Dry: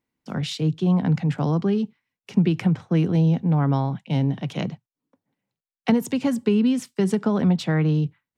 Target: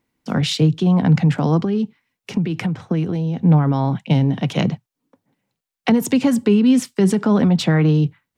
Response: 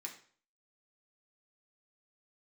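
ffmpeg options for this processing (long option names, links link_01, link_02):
-filter_complex "[0:a]alimiter=limit=-17dB:level=0:latency=1:release=54,asettb=1/sr,asplit=3[link_01][link_02][link_03];[link_01]atrim=end=1.644[link_04];[link_02]atrim=start=1.64:end=3.43,asetpts=PTS-STARTPTS,afade=type=in:duration=0.004:curve=qsin,afade=type=out:start_time=1.786:duration=0.004:curve=qsin,acompressor=threshold=-27dB:ratio=5[link_05];[link_03]atrim=start=3.426[link_06];[link_04][link_05]acrossfade=duration=0.004:curve1=hsin:curve2=qsin[link_07];[link_07][link_06]acrossfade=duration=0.004:curve1=qsin:curve2=hsin,aphaser=in_gain=1:out_gain=1:delay=4.3:decay=0.2:speed=1.7:type=sinusoidal,volume=8.5dB"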